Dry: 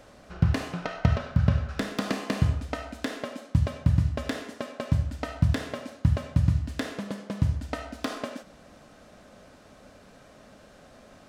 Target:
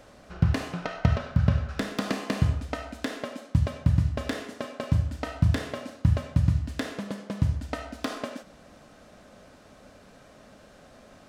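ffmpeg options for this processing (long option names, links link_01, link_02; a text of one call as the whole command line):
ffmpeg -i in.wav -filter_complex "[0:a]asettb=1/sr,asplit=3[link_01][link_02][link_03];[link_01]atrim=end=4.134[link_04];[link_02]atrim=start=4.13:end=6.2,asetpts=PTS-STARTPTS,afade=type=in:duration=0.004:curve=qsin,afade=type=out:start_time=2.066:duration=0.004:curve=qsin,asplit=2[link_05][link_06];[link_06]adelay=36,volume=-10.5dB[link_07];[link_05][link_07]amix=inputs=2:normalize=0,atrim=end_sample=91287[link_08];[link_03]atrim=start=6.196[link_09];[link_04][link_08]acrossfade=duration=0.004:curve1=hsin:curve2=qsin[link_10];[link_10][link_09]acrossfade=duration=0.004:curve1=qsin:curve2=hsin" out.wav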